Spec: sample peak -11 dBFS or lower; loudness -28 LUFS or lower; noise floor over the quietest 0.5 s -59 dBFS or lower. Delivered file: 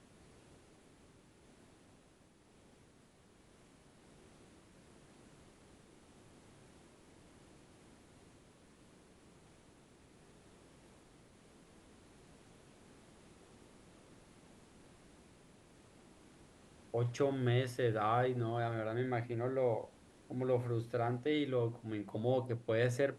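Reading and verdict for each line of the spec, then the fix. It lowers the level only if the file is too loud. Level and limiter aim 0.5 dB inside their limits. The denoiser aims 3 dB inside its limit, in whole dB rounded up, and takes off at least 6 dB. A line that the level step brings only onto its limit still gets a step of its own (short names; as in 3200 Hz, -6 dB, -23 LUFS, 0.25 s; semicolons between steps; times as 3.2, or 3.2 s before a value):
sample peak -20.0 dBFS: OK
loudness -36.0 LUFS: OK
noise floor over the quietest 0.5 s -65 dBFS: OK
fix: none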